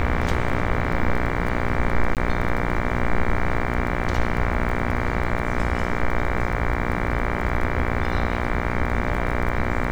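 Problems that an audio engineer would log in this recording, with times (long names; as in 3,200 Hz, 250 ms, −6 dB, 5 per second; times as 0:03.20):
mains buzz 60 Hz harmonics 39 −26 dBFS
surface crackle 13 per second −28 dBFS
0:02.15–0:02.17: drop-out 18 ms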